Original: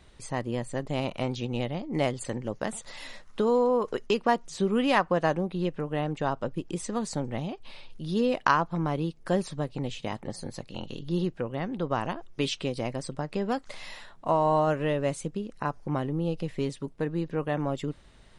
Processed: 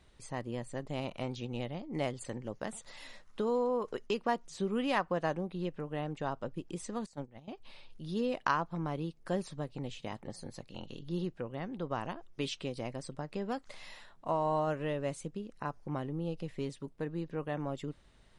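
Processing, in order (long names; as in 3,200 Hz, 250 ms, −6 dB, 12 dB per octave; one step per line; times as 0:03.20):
0:07.06–0:07.48: noise gate −28 dBFS, range −17 dB
level −7.5 dB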